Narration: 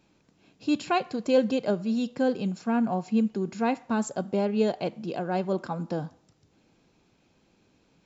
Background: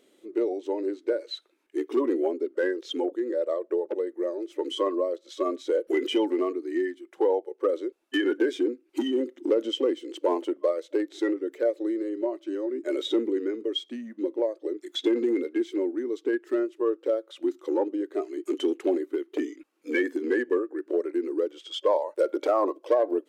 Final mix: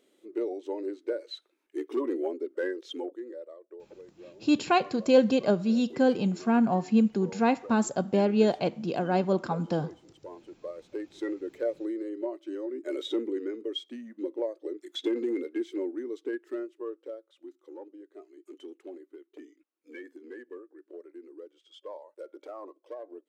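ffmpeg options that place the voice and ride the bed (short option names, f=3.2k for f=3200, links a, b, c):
-filter_complex "[0:a]adelay=3800,volume=2dB[a];[1:a]volume=10dB,afade=t=out:st=2.77:d=0.76:silence=0.177828,afade=t=in:st=10.47:d=1.05:silence=0.177828,afade=t=out:st=15.93:d=1.42:silence=0.199526[b];[a][b]amix=inputs=2:normalize=0"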